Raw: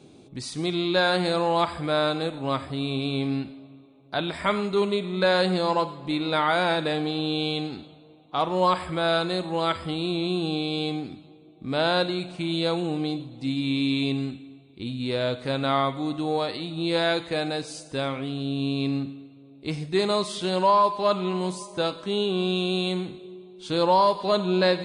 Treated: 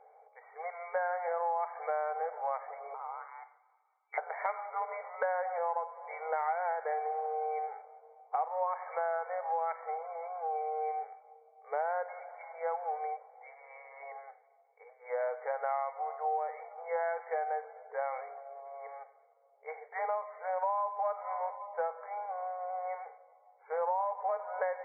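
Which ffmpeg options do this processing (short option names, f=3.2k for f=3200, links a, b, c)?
-filter_complex "[0:a]asettb=1/sr,asplit=3[a][b][c];[a]atrim=end=2.944[d];[b]atrim=start=2.94:end=4.18,asetpts=PTS-STARTPTS,afade=t=in:d=0.004:c=qsin,afade=t=out:st=1.236:d=0.004:c=qsin,lowpass=f=3.1k:t=q:w=0.5098,lowpass=f=3.1k:t=q:w=0.6013,lowpass=f=3.1k:t=q:w=0.9,lowpass=f=3.1k:t=q:w=2.563,afreqshift=-3600[e];[c]atrim=start=4.176[f];[d][e]acrossfade=d=0.004:c1=hsin:c2=qsin[g];[g][f]acrossfade=d=0.004:c1=qsin:c2=hsin,asettb=1/sr,asplit=3[h][i][j];[h]atrim=end=4.884[k];[i]atrim=start=4.88:end=5.59,asetpts=PTS-STARTPTS,afade=t=in:d=0.004:c=qsin,afade=t=out:st=0.706:d=0.004:c=qsin,equalizer=f=1k:w=0.67:g=3.5[l];[j]atrim=start=5.586[m];[k][l]acrossfade=d=0.004:c1=hsin:c2=qsin[n];[n][m]acrossfade=d=0.004:c1=qsin:c2=hsin,asettb=1/sr,asplit=3[o][p][q];[o]atrim=end=12.314[r];[p]atrim=start=12.31:end=14.16,asetpts=PTS-STARTPTS,afade=t=in:d=0.004:c=qsin,afade=t=out:st=1.846:d=0.004:c=qsin,highpass=480[s];[q]atrim=start=14.156[t];[r][s]acrossfade=d=0.004:c1=hsin:c2=qsin[u];[u][t]acrossfade=d=0.004:c1=qsin:c2=hsin,afftfilt=real='re*between(b*sr/4096,430,2300)':imag='im*between(b*sr/4096,430,2300)':win_size=4096:overlap=0.75,equalizer=f=790:t=o:w=0.35:g=14.5,acompressor=threshold=-25dB:ratio=6,volume=-5dB"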